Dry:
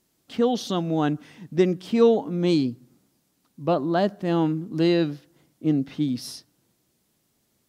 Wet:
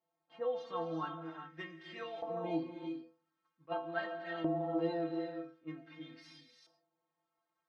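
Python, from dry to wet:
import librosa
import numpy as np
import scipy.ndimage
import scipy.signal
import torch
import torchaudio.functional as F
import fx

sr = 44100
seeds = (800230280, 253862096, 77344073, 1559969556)

y = scipy.signal.sosfilt(scipy.signal.butter(2, 6700.0, 'lowpass', fs=sr, output='sos'), x)
y = fx.high_shelf(y, sr, hz=5300.0, db=-5.5)
y = fx.stiff_resonator(y, sr, f0_hz=160.0, decay_s=0.36, stiffness=0.008)
y = fx.rev_gated(y, sr, seeds[0], gate_ms=410, shape='rising', drr_db=4.5)
y = fx.filter_lfo_bandpass(y, sr, shape='saw_up', hz=0.45, low_hz=750.0, high_hz=2200.0, q=2.0)
y = fx.attack_slew(y, sr, db_per_s=530.0)
y = F.gain(torch.from_numpy(y), 8.0).numpy()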